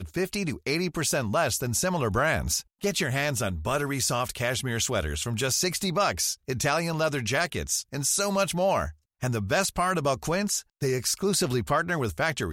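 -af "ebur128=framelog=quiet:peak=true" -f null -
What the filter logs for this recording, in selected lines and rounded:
Integrated loudness:
  I:         -26.5 LUFS
  Threshold: -36.5 LUFS
Loudness range:
  LRA:         0.8 LU
  Threshold: -46.5 LUFS
  LRA low:   -26.8 LUFS
  LRA high:  -26.0 LUFS
True peak:
  Peak:      -11.7 dBFS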